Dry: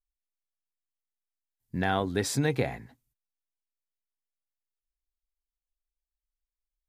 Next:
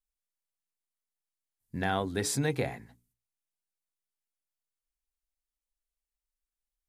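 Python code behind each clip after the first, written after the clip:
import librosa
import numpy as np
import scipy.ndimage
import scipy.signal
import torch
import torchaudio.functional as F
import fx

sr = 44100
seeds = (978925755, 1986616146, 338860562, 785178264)

y = fx.peak_eq(x, sr, hz=9600.0, db=5.5, octaves=0.96)
y = fx.hum_notches(y, sr, base_hz=60, count=7)
y = F.gain(torch.from_numpy(y), -2.5).numpy()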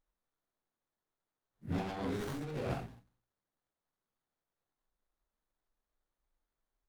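y = fx.phase_scramble(x, sr, seeds[0], window_ms=200)
y = fx.over_compress(y, sr, threshold_db=-37.0, ratio=-1.0)
y = fx.running_max(y, sr, window=17)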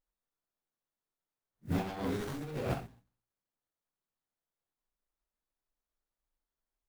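y = fx.mod_noise(x, sr, seeds[1], snr_db=25)
y = fx.upward_expand(y, sr, threshold_db=-51.0, expansion=1.5)
y = F.gain(torch.from_numpy(y), 4.0).numpy()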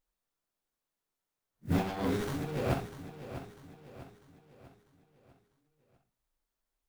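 y = fx.echo_feedback(x, sr, ms=647, feedback_pct=45, wet_db=-12.0)
y = F.gain(torch.from_numpy(y), 3.5).numpy()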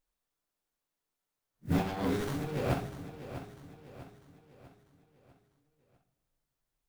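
y = fx.room_shoebox(x, sr, seeds[2], volume_m3=3400.0, walls='mixed', distance_m=0.38)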